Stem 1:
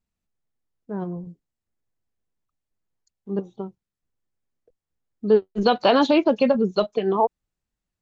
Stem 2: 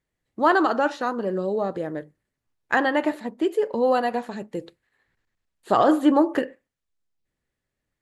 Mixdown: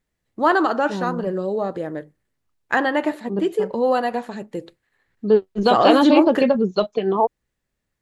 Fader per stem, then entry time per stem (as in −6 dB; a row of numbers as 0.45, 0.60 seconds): +1.5, +1.5 decibels; 0.00, 0.00 seconds